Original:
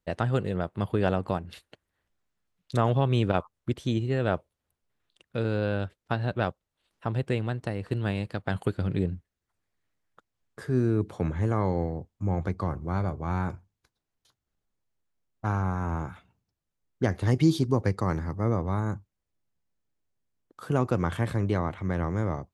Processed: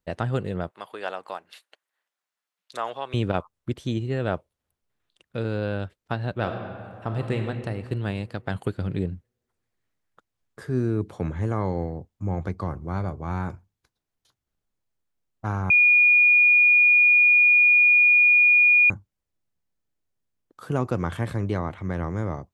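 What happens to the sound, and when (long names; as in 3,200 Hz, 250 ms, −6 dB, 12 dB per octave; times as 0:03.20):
0:00.71–0:03.14: high-pass filter 730 Hz
0:06.36–0:07.42: thrown reverb, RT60 2.2 s, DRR 3 dB
0:15.70–0:18.90: beep over 2,440 Hz −13 dBFS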